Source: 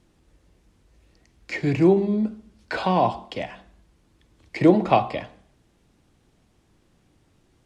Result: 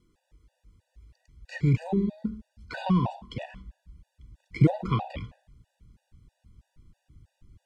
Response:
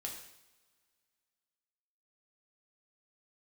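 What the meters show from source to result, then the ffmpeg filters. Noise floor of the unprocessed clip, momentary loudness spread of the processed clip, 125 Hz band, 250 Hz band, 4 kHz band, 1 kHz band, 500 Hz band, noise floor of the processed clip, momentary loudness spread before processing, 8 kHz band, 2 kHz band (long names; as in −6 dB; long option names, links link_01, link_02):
−64 dBFS, 19 LU, +2.5 dB, −6.0 dB, −7.5 dB, −11.5 dB, −13.0 dB, −79 dBFS, 15 LU, can't be measured, −8.5 dB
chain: -af "asubboost=boost=11:cutoff=140,afftfilt=real='re*gt(sin(2*PI*3.1*pts/sr)*(1-2*mod(floor(b*sr/1024/490),2)),0)':imag='im*gt(sin(2*PI*3.1*pts/sr)*(1-2*mod(floor(b*sr/1024/490),2)),0)':win_size=1024:overlap=0.75,volume=-4.5dB"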